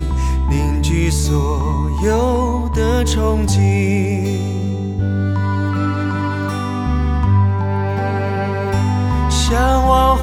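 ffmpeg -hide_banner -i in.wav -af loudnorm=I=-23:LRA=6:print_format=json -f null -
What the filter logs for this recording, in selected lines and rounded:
"input_i" : "-17.0",
"input_tp" : "-2.2",
"input_lra" : "2.3",
"input_thresh" : "-27.0",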